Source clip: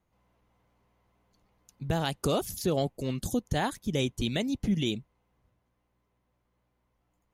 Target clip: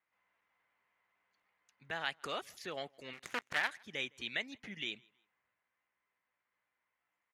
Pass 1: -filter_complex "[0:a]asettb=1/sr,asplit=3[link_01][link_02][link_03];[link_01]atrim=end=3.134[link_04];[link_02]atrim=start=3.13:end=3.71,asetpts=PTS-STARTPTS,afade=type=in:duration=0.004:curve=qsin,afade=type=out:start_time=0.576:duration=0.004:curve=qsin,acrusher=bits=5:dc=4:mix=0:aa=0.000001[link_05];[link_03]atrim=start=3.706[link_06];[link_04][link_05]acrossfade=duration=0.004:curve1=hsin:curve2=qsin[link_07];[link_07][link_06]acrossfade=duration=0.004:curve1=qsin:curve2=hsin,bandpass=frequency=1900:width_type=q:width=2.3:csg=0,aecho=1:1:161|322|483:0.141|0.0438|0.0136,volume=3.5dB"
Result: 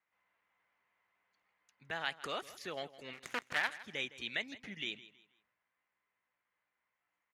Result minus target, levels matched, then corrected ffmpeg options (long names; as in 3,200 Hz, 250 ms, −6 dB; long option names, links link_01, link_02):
echo-to-direct +11.5 dB
-filter_complex "[0:a]asettb=1/sr,asplit=3[link_01][link_02][link_03];[link_01]atrim=end=3.134[link_04];[link_02]atrim=start=3.13:end=3.71,asetpts=PTS-STARTPTS,afade=type=in:duration=0.004:curve=qsin,afade=type=out:start_time=0.576:duration=0.004:curve=qsin,acrusher=bits=5:dc=4:mix=0:aa=0.000001[link_05];[link_03]atrim=start=3.706[link_06];[link_04][link_05]acrossfade=duration=0.004:curve1=hsin:curve2=qsin[link_07];[link_07][link_06]acrossfade=duration=0.004:curve1=qsin:curve2=hsin,bandpass=frequency=1900:width_type=q:width=2.3:csg=0,aecho=1:1:161|322:0.0376|0.0117,volume=3.5dB"